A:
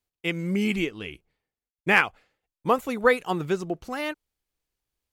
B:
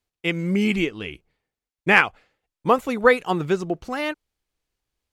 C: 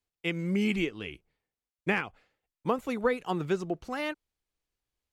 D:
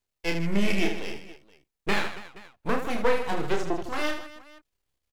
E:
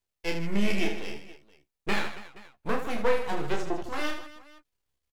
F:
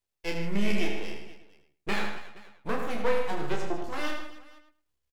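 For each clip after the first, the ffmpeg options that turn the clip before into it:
-af "highshelf=f=11k:g=-10.5,volume=4dB"
-filter_complex "[0:a]acrossover=split=380[a][b];[b]acompressor=threshold=-20dB:ratio=6[c];[a][c]amix=inputs=2:normalize=0,volume=-6.5dB"
-af "aeval=exprs='max(val(0),0)':c=same,aecho=1:1:30|78|154.8|277.7|474.3:0.631|0.398|0.251|0.158|0.1,volume=6dB"
-filter_complex "[0:a]asplit=2[a][b];[b]adelay=14,volume=-9dB[c];[a][c]amix=inputs=2:normalize=0,volume=-3dB"
-filter_complex "[0:a]asplit=2[a][b];[b]adelay=106,lowpass=f=4k:p=1,volume=-6.5dB,asplit=2[c][d];[d]adelay=106,lowpass=f=4k:p=1,volume=0.17,asplit=2[e][f];[f]adelay=106,lowpass=f=4k:p=1,volume=0.17[g];[a][c][e][g]amix=inputs=4:normalize=0,volume=-2dB"

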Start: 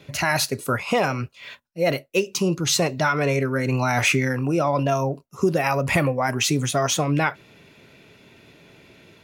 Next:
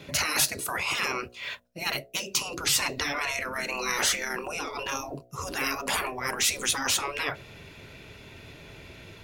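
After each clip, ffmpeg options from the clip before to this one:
-af "asubboost=boost=5:cutoff=83,afftfilt=real='re*lt(hypot(re,im),0.141)':imag='im*lt(hypot(re,im),0.141)':win_size=1024:overlap=0.75,bandreject=f=60.77:t=h:w=4,bandreject=f=121.54:t=h:w=4,bandreject=f=182.31:t=h:w=4,bandreject=f=243.08:t=h:w=4,bandreject=f=303.85:t=h:w=4,bandreject=f=364.62:t=h:w=4,bandreject=f=425.39:t=h:w=4,bandreject=f=486.16:t=h:w=4,bandreject=f=546.93:t=h:w=4,bandreject=f=607.7:t=h:w=4,bandreject=f=668.47:t=h:w=4,bandreject=f=729.24:t=h:w=4,volume=4dB"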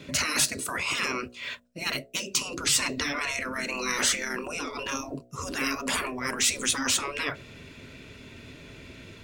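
-af "equalizer=f=250:t=o:w=0.33:g=9,equalizer=f=800:t=o:w=0.33:g=-8,equalizer=f=8k:t=o:w=0.33:g=5,equalizer=f=12.5k:t=o:w=0.33:g=-10"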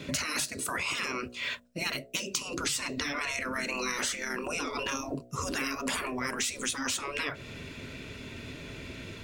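-af "acompressor=threshold=-33dB:ratio=6,volume=3.5dB"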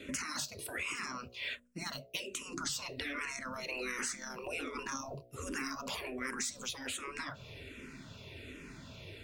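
-filter_complex "[0:a]asplit=2[a][b];[b]afreqshift=-1.3[c];[a][c]amix=inputs=2:normalize=1,volume=-4dB"

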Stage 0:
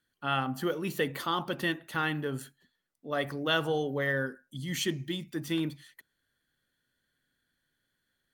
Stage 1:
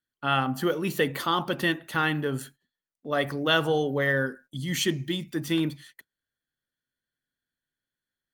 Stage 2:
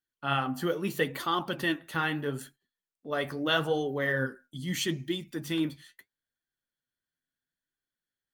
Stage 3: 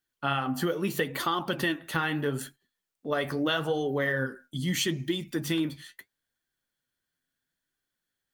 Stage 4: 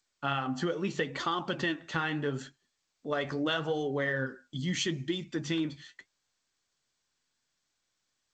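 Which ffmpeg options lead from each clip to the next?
-af "agate=range=-16dB:threshold=-54dB:ratio=16:detection=peak,volume=5dB"
-af "flanger=delay=2.5:depth=9.6:regen=52:speed=0.77:shape=sinusoidal"
-af "acompressor=threshold=-31dB:ratio=6,volume=6.5dB"
-af "volume=-3dB" -ar 16000 -c:a g722

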